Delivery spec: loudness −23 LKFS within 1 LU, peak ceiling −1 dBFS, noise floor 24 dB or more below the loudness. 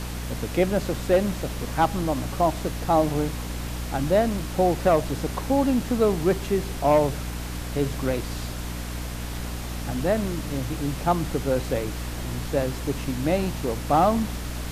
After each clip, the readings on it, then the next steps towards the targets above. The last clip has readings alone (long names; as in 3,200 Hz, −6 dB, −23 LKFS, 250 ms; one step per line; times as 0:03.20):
mains hum 60 Hz; hum harmonics up to 300 Hz; level of the hum −30 dBFS; background noise floor −32 dBFS; target noise floor −50 dBFS; integrated loudness −25.5 LKFS; sample peak −8.0 dBFS; target loudness −23.0 LKFS
→ hum removal 60 Hz, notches 5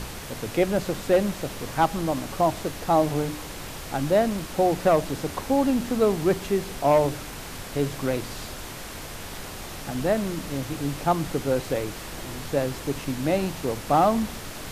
mains hum none found; background noise floor −38 dBFS; target noise floor −50 dBFS
→ noise reduction from a noise print 12 dB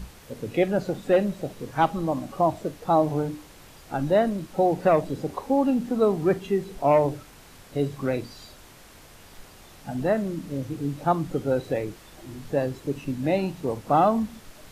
background noise floor −49 dBFS; target noise floor −50 dBFS
→ noise reduction from a noise print 6 dB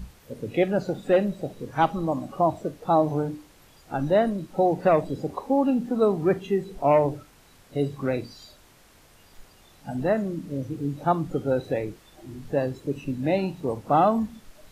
background noise floor −55 dBFS; integrated loudness −25.5 LKFS; sample peak −8.5 dBFS; target loudness −23.0 LKFS
→ level +2.5 dB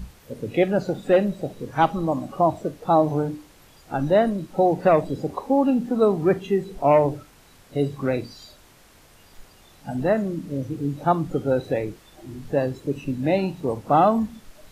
integrated loudness −23.0 LKFS; sample peak −6.0 dBFS; background noise floor −52 dBFS